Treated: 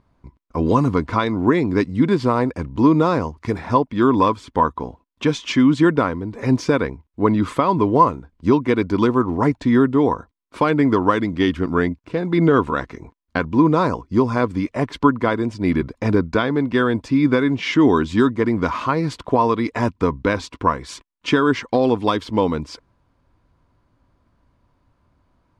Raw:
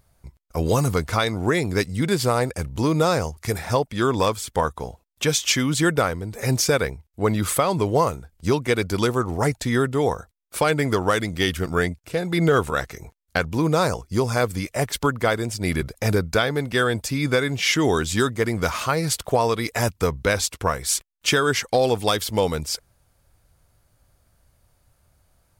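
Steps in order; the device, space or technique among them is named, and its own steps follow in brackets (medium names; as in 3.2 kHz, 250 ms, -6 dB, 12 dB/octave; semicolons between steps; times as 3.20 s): inside a cardboard box (low-pass 3.4 kHz 12 dB/octave; small resonant body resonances 270/1000 Hz, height 13 dB, ringing for 25 ms); trim -2 dB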